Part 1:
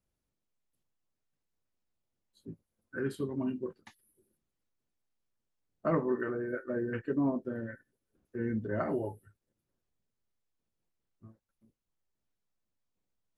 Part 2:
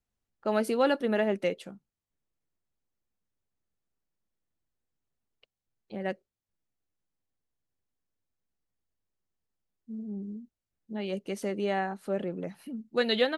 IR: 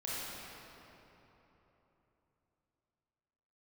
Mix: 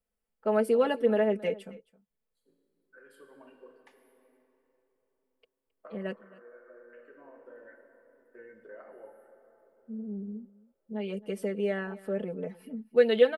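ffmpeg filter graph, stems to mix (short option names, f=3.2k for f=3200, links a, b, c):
-filter_complex "[0:a]highpass=740,acompressor=threshold=-47dB:ratio=6,volume=-5.5dB,asplit=2[a][b];[b]volume=-7.5dB[c];[1:a]aecho=1:1:4.6:0.86,volume=-5.5dB,asplit=3[d][e][f];[e]volume=-20.5dB[g];[f]apad=whole_len=589696[h];[a][h]sidechaincompress=threshold=-52dB:ratio=3:attack=16:release=1200[i];[2:a]atrim=start_sample=2205[j];[c][j]afir=irnorm=-1:irlink=0[k];[g]aecho=0:1:267:1[l];[i][d][k][l]amix=inputs=4:normalize=0,equalizer=f=500:t=o:w=0.33:g=11,equalizer=f=4k:t=o:w=0.33:g=-9,equalizer=f=6.3k:t=o:w=0.33:g=-10"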